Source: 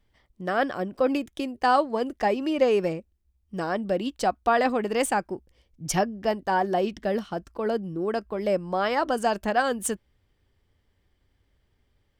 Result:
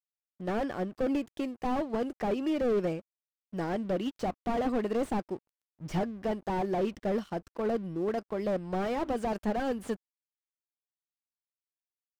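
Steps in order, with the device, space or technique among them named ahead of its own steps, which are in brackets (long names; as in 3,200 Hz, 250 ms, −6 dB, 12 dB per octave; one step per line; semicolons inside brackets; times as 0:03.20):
early transistor amplifier (dead-zone distortion −51.5 dBFS; slew-rate limiting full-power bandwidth 32 Hz)
level −2.5 dB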